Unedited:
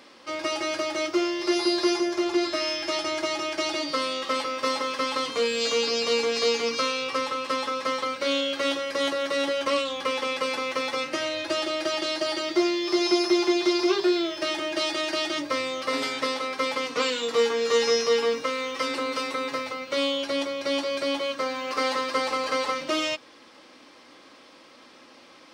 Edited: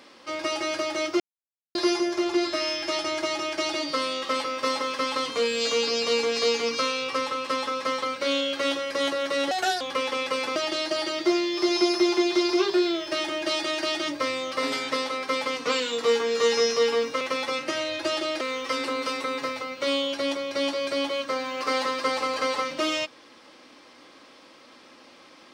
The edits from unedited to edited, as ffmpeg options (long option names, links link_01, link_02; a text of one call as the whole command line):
ffmpeg -i in.wav -filter_complex "[0:a]asplit=8[link_01][link_02][link_03][link_04][link_05][link_06][link_07][link_08];[link_01]atrim=end=1.2,asetpts=PTS-STARTPTS,afade=type=out:start_time=1.196:duration=0.004:curve=hsin[link_09];[link_02]atrim=start=1.2:end=1.75,asetpts=PTS-STARTPTS,volume=0[link_10];[link_03]atrim=start=1.75:end=9.514,asetpts=PTS-STARTPTS,afade=type=in:duration=0.004:curve=hsin[link_11];[link_04]atrim=start=9.51:end=9.91,asetpts=PTS-STARTPTS,asetrate=59094,aresample=44100,atrim=end_sample=13164,asetpts=PTS-STARTPTS[link_12];[link_05]atrim=start=9.906:end=10.662[link_13];[link_06]atrim=start=11.858:end=18.512[link_14];[link_07]atrim=start=10.658:end=11.862[link_15];[link_08]atrim=start=18.508[link_16];[link_09][link_10][link_11]concat=n=3:v=0:a=1[link_17];[link_17][link_12]acrossfade=duration=0.004:curve1=hsin:curve2=hsin[link_18];[link_18][link_13]acrossfade=duration=0.004:curve1=hsin:curve2=hsin[link_19];[link_19][link_14]acrossfade=duration=0.004:curve1=hsin:curve2=hsin[link_20];[link_20][link_15]acrossfade=duration=0.004:curve1=hsin:curve2=hsin[link_21];[link_21][link_16]acrossfade=duration=0.004:curve1=hsin:curve2=hsin" out.wav